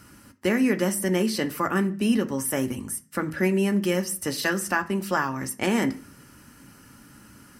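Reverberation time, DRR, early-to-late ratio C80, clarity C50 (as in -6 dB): 0.40 s, 6.5 dB, 22.0 dB, 17.5 dB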